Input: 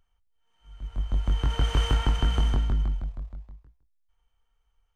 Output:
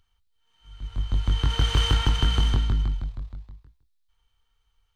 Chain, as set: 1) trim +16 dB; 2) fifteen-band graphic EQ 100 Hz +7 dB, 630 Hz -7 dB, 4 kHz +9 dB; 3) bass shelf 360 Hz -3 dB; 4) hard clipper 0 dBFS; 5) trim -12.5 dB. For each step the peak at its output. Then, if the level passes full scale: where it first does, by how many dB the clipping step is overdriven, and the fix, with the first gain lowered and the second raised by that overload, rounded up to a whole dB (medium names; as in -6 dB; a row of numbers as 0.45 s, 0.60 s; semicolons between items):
+3.0 dBFS, +6.0 dBFS, +4.0 dBFS, 0.0 dBFS, -12.5 dBFS; step 1, 4.0 dB; step 1 +12 dB, step 5 -8.5 dB